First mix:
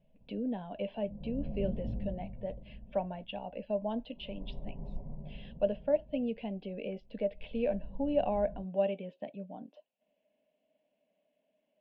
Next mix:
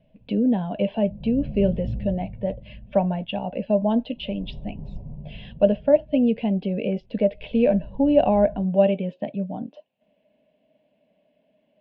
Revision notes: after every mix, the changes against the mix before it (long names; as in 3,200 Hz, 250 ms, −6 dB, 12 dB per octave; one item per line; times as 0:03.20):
speech +10.5 dB
master: add parametric band 95 Hz +12.5 dB 2 octaves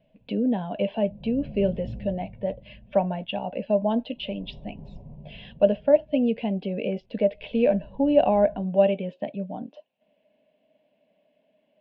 master: add low-shelf EQ 200 Hz −9 dB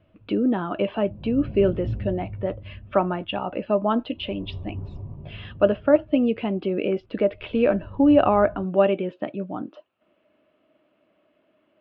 master: remove phaser with its sweep stopped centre 340 Hz, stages 6